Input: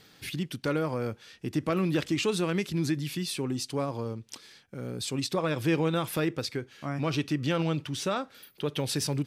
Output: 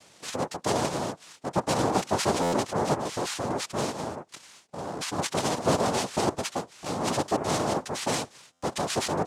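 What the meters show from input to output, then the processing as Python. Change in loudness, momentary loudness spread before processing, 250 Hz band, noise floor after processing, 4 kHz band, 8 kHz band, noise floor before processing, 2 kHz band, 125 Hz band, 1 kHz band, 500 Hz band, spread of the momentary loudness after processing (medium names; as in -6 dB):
+1.5 dB, 10 LU, -1.5 dB, -58 dBFS, +2.0 dB, +6.0 dB, -59 dBFS, +1.0 dB, -3.5 dB, +9.0 dB, +3.0 dB, 11 LU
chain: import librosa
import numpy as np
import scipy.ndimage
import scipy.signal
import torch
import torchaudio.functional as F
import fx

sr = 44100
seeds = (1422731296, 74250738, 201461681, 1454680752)

y = fx.noise_vocoder(x, sr, seeds[0], bands=2)
y = fx.buffer_glitch(y, sr, at_s=(2.42, 8.52), block=512, repeats=8)
y = F.gain(torch.from_numpy(y), 1.5).numpy()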